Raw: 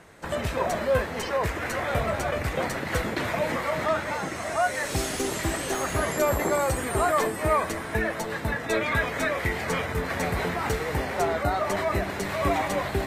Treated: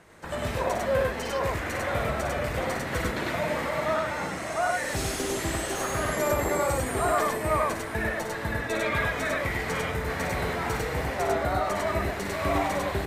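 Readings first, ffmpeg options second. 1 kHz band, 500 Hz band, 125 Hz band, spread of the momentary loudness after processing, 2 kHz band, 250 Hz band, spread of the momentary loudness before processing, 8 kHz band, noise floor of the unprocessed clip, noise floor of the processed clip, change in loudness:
-1.0 dB, -1.0 dB, -1.0 dB, 4 LU, -1.0 dB, -1.5 dB, 5 LU, -1.0 dB, -34 dBFS, -34 dBFS, -1.0 dB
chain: -af "aecho=1:1:55.39|99.13:0.447|0.891,volume=-4dB"

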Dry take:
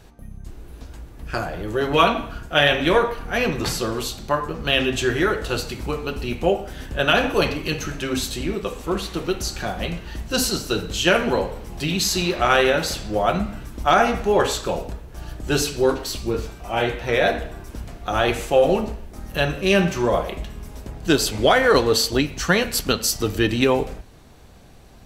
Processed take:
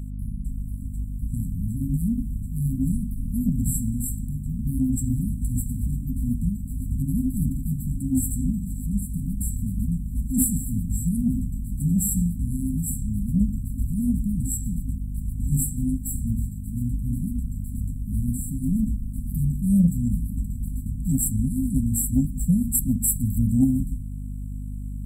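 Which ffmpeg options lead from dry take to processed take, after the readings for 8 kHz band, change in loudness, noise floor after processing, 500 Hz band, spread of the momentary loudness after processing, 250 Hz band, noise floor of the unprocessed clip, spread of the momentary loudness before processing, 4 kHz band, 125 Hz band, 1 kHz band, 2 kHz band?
0.0 dB, -4.5 dB, -33 dBFS, under -35 dB, 9 LU, +1.5 dB, -43 dBFS, 13 LU, under -40 dB, +5.0 dB, under -40 dB, under -40 dB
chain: -af "aeval=exprs='val(0)+0.0178*(sin(2*PI*50*n/s)+sin(2*PI*2*50*n/s)/2+sin(2*PI*3*50*n/s)/3+sin(2*PI*4*50*n/s)/4+sin(2*PI*5*50*n/s)/5)':c=same,afftfilt=real='re*(1-between(b*sr/4096,270,7500))':imag='im*(1-between(b*sr/4096,270,7500))':win_size=4096:overlap=0.75,acontrast=76,volume=-2.5dB"

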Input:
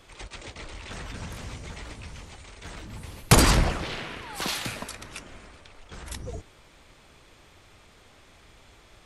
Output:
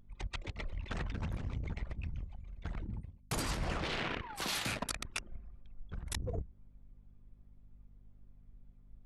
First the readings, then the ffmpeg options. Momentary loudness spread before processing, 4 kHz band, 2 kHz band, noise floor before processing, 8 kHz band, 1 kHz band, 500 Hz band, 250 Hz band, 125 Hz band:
22 LU, -10.0 dB, -9.0 dB, -55 dBFS, -13.0 dB, -11.5 dB, -11.5 dB, -12.0 dB, -10.5 dB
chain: -af "bandreject=f=60:t=h:w=6,bandreject=f=120:t=h:w=6,bandreject=f=180:t=h:w=6,bandreject=f=240:t=h:w=6,bandreject=f=300:t=h:w=6,bandreject=f=360:t=h:w=6,bandreject=f=420:t=h:w=6,bandreject=f=480:t=h:w=6,bandreject=f=540:t=h:w=6,anlmdn=2.51,areverse,acompressor=threshold=-39dB:ratio=16,areverse,aeval=exprs='val(0)+0.000447*(sin(2*PI*50*n/s)+sin(2*PI*2*50*n/s)/2+sin(2*PI*3*50*n/s)/3+sin(2*PI*4*50*n/s)/4+sin(2*PI*5*50*n/s)/5)':c=same,volume=6dB"

